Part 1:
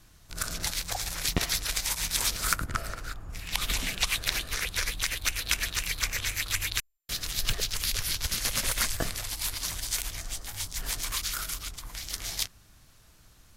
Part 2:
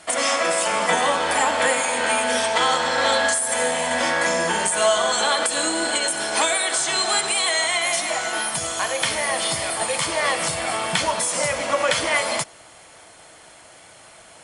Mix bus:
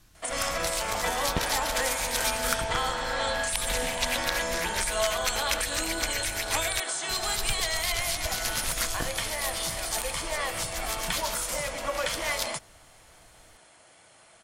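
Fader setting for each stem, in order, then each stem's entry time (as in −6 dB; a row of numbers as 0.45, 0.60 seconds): −2.0, −9.5 decibels; 0.00, 0.15 seconds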